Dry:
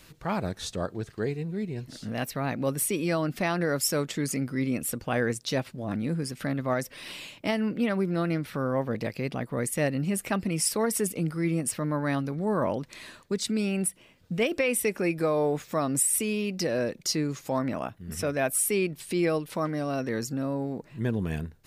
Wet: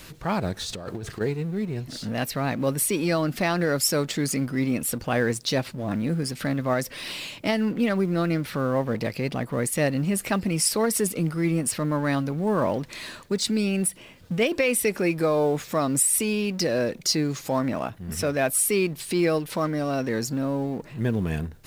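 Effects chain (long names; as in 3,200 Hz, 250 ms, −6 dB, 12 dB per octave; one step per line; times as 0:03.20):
mu-law and A-law mismatch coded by mu
dynamic equaliser 4,400 Hz, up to +4 dB, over −49 dBFS, Q 3
0:00.62–0:01.21: compressor whose output falls as the input rises −36 dBFS, ratio −1
level +2.5 dB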